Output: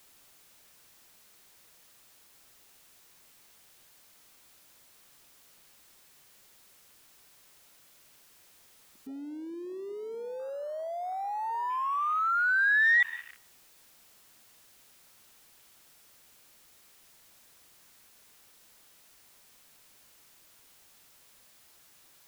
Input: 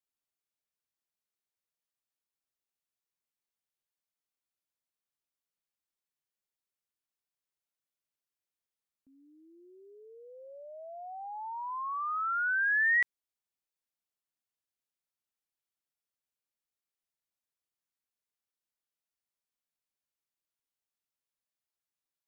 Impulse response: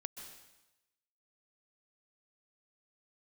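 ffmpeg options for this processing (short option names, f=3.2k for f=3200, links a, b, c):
-filter_complex "[0:a]aeval=exprs='val(0)+0.5*0.015*sgn(val(0))':c=same,asplit=2[a][b];[1:a]atrim=start_sample=2205[c];[b][c]afir=irnorm=-1:irlink=0,volume=-6.5dB[d];[a][d]amix=inputs=2:normalize=0,afwtdn=0.0112"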